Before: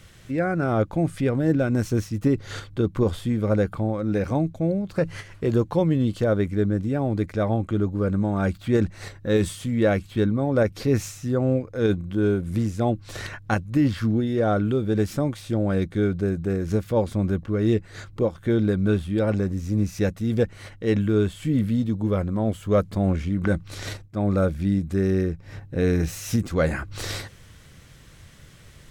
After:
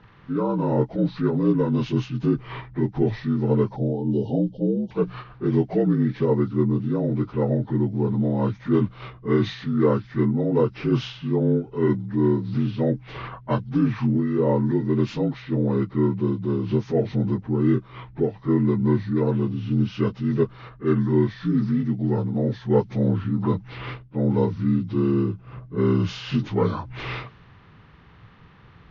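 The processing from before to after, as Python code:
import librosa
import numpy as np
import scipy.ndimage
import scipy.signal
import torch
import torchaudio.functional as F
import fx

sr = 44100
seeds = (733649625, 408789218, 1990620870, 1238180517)

y = fx.partial_stretch(x, sr, pct=77)
y = fx.brickwall_bandstop(y, sr, low_hz=920.0, high_hz=2800.0, at=(3.76, 4.91))
y = fx.env_lowpass(y, sr, base_hz=2200.0, full_db=-17.0)
y = y * 10.0 ** (1.5 / 20.0)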